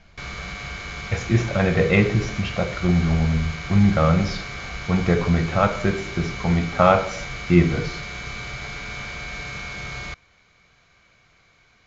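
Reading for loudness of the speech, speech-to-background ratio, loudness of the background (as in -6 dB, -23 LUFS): -21.0 LUFS, 11.0 dB, -32.0 LUFS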